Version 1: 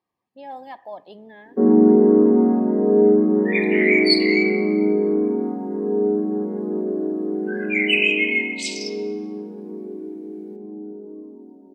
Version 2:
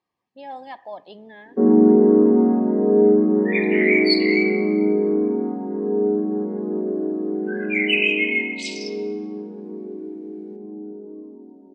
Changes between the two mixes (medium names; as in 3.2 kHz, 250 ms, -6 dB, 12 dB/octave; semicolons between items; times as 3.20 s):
speech: add treble shelf 2.4 kHz +8 dB; master: add distance through air 76 m